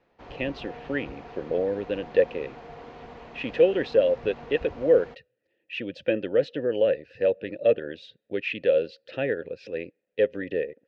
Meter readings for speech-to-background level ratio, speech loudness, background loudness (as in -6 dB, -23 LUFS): 17.5 dB, -26.5 LUFS, -44.0 LUFS